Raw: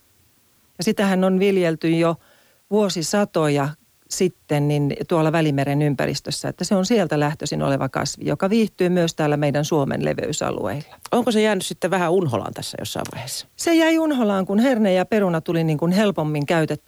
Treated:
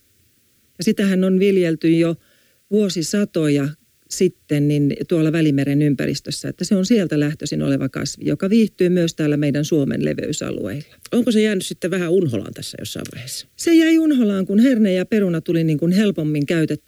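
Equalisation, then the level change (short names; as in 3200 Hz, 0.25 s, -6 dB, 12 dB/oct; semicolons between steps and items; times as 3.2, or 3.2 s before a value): Butterworth band-stop 880 Hz, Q 0.88; dynamic EQ 280 Hz, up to +6 dB, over -31 dBFS, Q 1.4; 0.0 dB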